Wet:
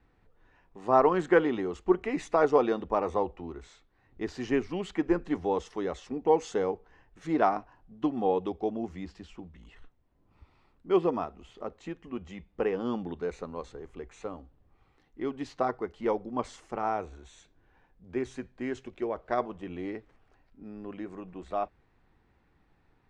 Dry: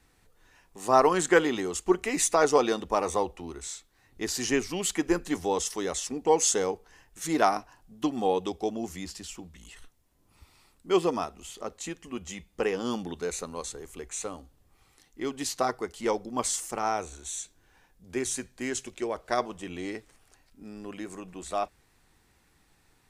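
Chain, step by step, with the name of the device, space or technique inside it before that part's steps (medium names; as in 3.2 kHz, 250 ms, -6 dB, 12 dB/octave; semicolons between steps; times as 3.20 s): phone in a pocket (low-pass 3.4 kHz 12 dB/octave; treble shelf 2.1 kHz -11 dB)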